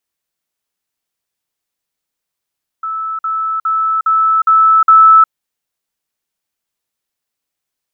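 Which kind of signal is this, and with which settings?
level staircase 1,310 Hz −17.5 dBFS, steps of 3 dB, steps 6, 0.36 s 0.05 s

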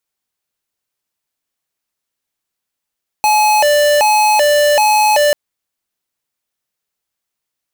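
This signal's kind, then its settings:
siren hi-lo 589–850 Hz 1.3 per second square −11 dBFS 2.09 s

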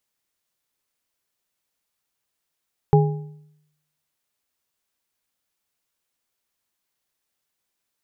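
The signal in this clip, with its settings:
struck metal bar, lowest mode 151 Hz, modes 3, decay 0.80 s, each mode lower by 3.5 dB, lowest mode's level −10.5 dB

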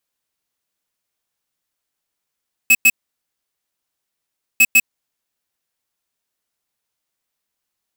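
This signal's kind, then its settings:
beeps in groups square 2,580 Hz, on 0.05 s, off 0.10 s, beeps 2, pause 1.70 s, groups 2, −10 dBFS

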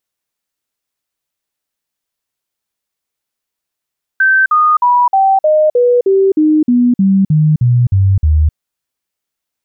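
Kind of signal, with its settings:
stepped sweep 1,550 Hz down, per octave 3, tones 14, 0.26 s, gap 0.05 s −6.5 dBFS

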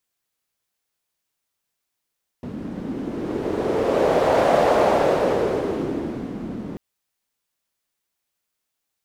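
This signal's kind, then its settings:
wind from filtered noise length 4.34 s, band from 230 Hz, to 610 Hz, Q 2.6, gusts 1, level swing 14 dB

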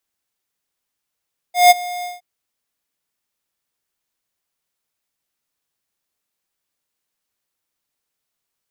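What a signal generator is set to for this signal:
note with an ADSR envelope square 713 Hz, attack 166 ms, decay 24 ms, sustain −20 dB, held 0.50 s, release 167 ms −6.5 dBFS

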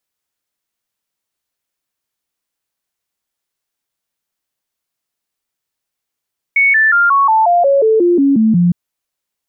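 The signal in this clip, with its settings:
stepped sweep 2,220 Hz down, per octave 3, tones 12, 0.18 s, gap 0.00 s −7.5 dBFS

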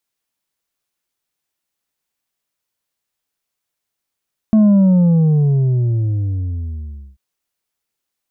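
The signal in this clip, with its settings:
bass drop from 220 Hz, over 2.64 s, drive 4.5 dB, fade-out 2.56 s, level −8 dB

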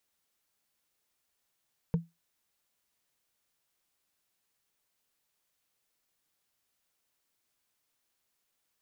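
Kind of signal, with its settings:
struck wood, lowest mode 167 Hz, decay 0.20 s, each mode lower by 9 dB, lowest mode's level −20 dB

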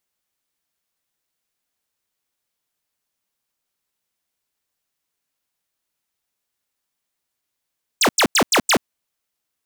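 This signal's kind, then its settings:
repeated falling chirps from 9,200 Hz, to 170 Hz, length 0.08 s square, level −14.5 dB, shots 5, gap 0.09 s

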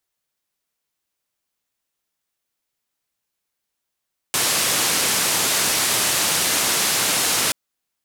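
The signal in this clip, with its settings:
band-limited noise 110–11,000 Hz, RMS −20 dBFS 3.18 s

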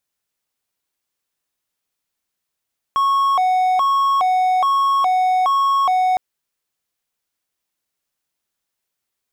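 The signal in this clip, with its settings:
siren hi-lo 741–1,100 Hz 1.2 per second triangle −11.5 dBFS 3.21 s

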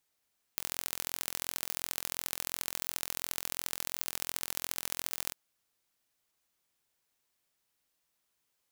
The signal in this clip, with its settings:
impulse train 42.8 per second, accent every 3, −5 dBFS 4.75 s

